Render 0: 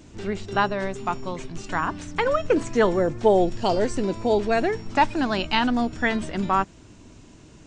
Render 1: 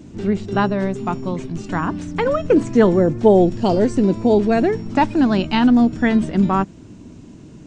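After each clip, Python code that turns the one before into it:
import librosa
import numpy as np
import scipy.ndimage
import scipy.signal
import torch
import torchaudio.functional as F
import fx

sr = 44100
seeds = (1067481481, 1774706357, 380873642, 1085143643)

y = fx.peak_eq(x, sr, hz=200.0, db=12.5, octaves=2.4)
y = y * 10.0 ** (-1.0 / 20.0)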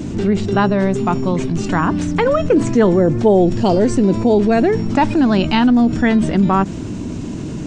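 y = fx.env_flatten(x, sr, amount_pct=50)
y = y * 10.0 ** (-1.0 / 20.0)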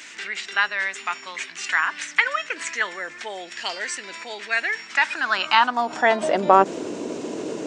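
y = fx.filter_sweep_highpass(x, sr, from_hz=1900.0, to_hz=470.0, start_s=4.93, end_s=6.66, q=2.8)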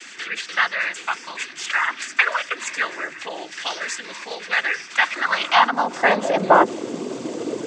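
y = fx.noise_vocoder(x, sr, seeds[0], bands=16)
y = y * 10.0 ** (2.0 / 20.0)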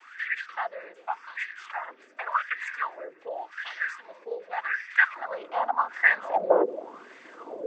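y = fx.wah_lfo(x, sr, hz=0.87, low_hz=450.0, high_hz=1900.0, q=6.6)
y = y * 10.0 ** (4.0 / 20.0)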